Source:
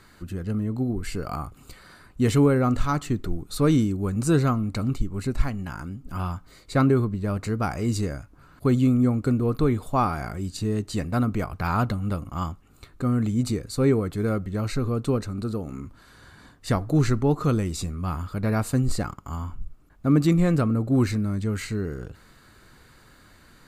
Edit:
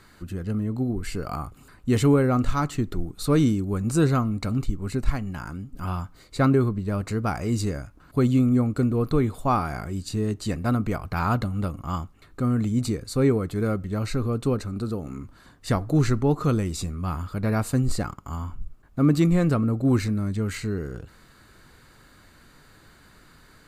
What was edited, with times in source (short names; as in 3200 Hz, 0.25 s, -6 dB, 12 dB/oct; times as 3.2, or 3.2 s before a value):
shrink pauses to 25%